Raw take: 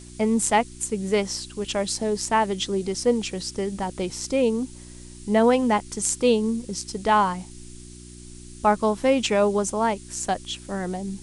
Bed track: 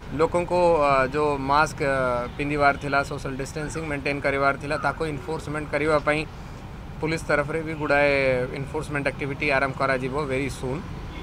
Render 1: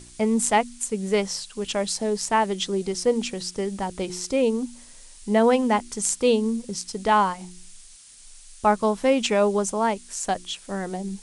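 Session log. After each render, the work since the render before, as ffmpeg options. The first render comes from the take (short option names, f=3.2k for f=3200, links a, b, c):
-af "bandreject=f=60:t=h:w=4,bandreject=f=120:t=h:w=4,bandreject=f=180:t=h:w=4,bandreject=f=240:t=h:w=4,bandreject=f=300:t=h:w=4,bandreject=f=360:t=h:w=4"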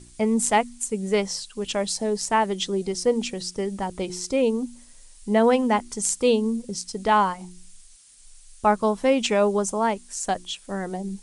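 -af "afftdn=nr=6:nf=-47"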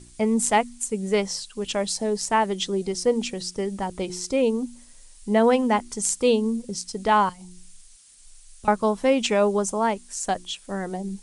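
-filter_complex "[0:a]asettb=1/sr,asplit=3[a][b][c];[a]atrim=end=7.294[d];[b]atrim=start=7.29:end=8.68,asetpts=PTS-STARTPTS,afade=t=in:d=0.004:c=qsin,afade=t=out:st=1.386:d=0.004:c=qsin,acrossover=split=170|3000[e][f][g];[f]acompressor=threshold=-48dB:ratio=5:attack=3.2:release=140:knee=2.83:detection=peak[h];[e][h][g]amix=inputs=3:normalize=0[i];[c]atrim=start=8.676[j];[d][i]acrossfade=d=0.004:c1=hsin:c2=qsin[k];[k][j]acrossfade=d=0.004:c1=qsin:c2=hsin"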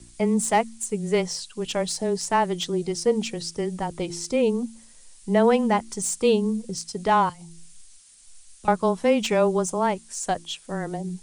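-filter_complex "[0:a]acrossover=split=1100[a][b];[b]asoftclip=type=tanh:threshold=-20dB[c];[a][c]amix=inputs=2:normalize=0,afreqshift=-14"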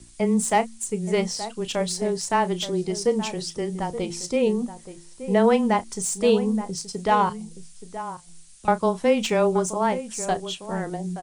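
-filter_complex "[0:a]asplit=2[a][b];[b]adelay=33,volume=-14dB[c];[a][c]amix=inputs=2:normalize=0,asplit=2[d][e];[e]adelay=874.6,volume=-12dB,highshelf=f=4k:g=-19.7[f];[d][f]amix=inputs=2:normalize=0"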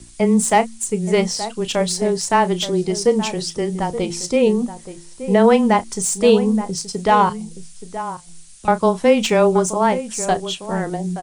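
-af "volume=6dB,alimiter=limit=-3dB:level=0:latency=1"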